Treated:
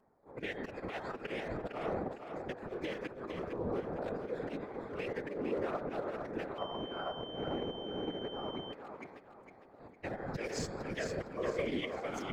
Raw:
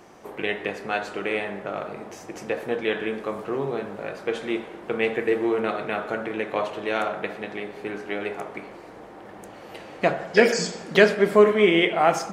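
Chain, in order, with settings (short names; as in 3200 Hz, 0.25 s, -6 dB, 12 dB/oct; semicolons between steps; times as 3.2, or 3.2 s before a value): Wiener smoothing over 15 samples; gate with hold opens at -30 dBFS; de-hum 403.3 Hz, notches 11; level quantiser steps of 10 dB; auto swell 0.257 s; compressor 8:1, threshold -42 dBFS, peak gain reduction 23.5 dB; robotiser 153 Hz; phaser 0.52 Hz, delay 1 ms, feedback 29%; whisperiser; thinning echo 0.457 s, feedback 37%, high-pass 200 Hz, level -6.5 dB; 6.58–8.73 pulse-width modulation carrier 3100 Hz; gain +8.5 dB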